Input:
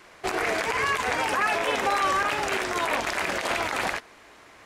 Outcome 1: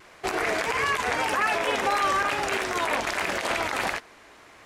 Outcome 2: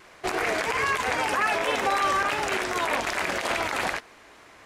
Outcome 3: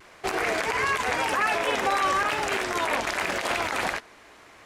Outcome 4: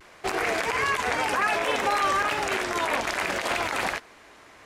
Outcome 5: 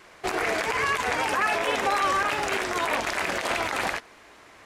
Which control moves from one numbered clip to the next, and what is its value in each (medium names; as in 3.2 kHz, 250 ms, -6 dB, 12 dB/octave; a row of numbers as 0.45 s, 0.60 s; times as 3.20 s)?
vibrato, rate: 1.6 Hz, 3 Hz, 0.94 Hz, 0.62 Hz, 9.9 Hz